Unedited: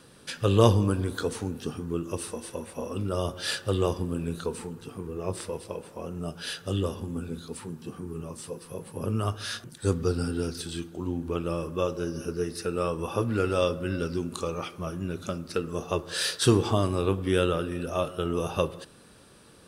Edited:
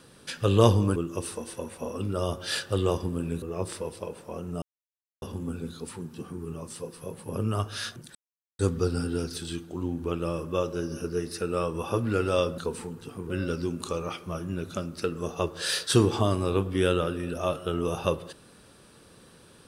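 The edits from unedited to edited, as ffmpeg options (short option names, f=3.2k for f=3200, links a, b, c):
-filter_complex "[0:a]asplit=8[a][b][c][d][e][f][g][h];[a]atrim=end=0.962[i];[b]atrim=start=1.918:end=4.382[j];[c]atrim=start=5.098:end=6.3,asetpts=PTS-STARTPTS,afade=t=out:st=1.198:d=0.004:c=hsin[k];[d]atrim=start=6.3:end=6.9,asetpts=PTS-STARTPTS,volume=0[l];[e]atrim=start=6.9:end=9.83,asetpts=PTS-STARTPTS,afade=t=in:d=0.004:c=hsin,afade=t=out:st=2.926:d=0.004:c=hsin,apad=pad_dur=0.44[m];[f]atrim=start=9.83:end=13.822,asetpts=PTS-STARTPTS,afade=t=in:d=0.004:c=hsin[n];[g]atrim=start=4.378:end=5.102[o];[h]atrim=start=13.818[p];[i][j]acrossfade=d=0.004:c1=hsin:c2=hsin[q];[k][l][m][n]concat=n=4:v=0:a=1[r];[q][r]acrossfade=d=0.004:c1=hsin:c2=hsin[s];[s][o]acrossfade=d=0.004:c1=hsin:c2=hsin[t];[t][p]acrossfade=d=0.004:c1=hsin:c2=hsin"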